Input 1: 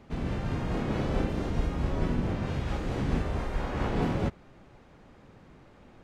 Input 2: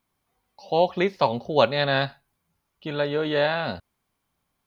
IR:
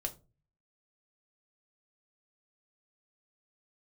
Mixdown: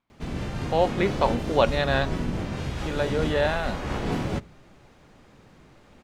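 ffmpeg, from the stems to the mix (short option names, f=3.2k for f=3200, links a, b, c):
-filter_complex "[0:a]highshelf=f=3.2k:g=9,adelay=100,volume=-1dB,asplit=2[a][b];[b]volume=-14.5dB[c];[1:a]lowpass=3.7k,volume=-1.5dB[d];[2:a]atrim=start_sample=2205[e];[c][e]afir=irnorm=-1:irlink=0[f];[a][d][f]amix=inputs=3:normalize=0"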